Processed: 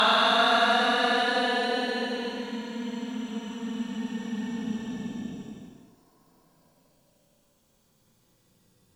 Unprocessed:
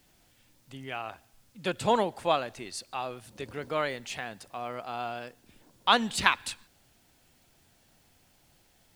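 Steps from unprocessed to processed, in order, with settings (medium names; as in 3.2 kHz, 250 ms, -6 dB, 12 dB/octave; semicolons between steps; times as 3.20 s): slices played last to first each 189 ms, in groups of 4; Paulstretch 43×, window 0.05 s, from 5.36 s; Chebyshev shaper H 7 -37 dB, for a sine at -7 dBFS; trim -2 dB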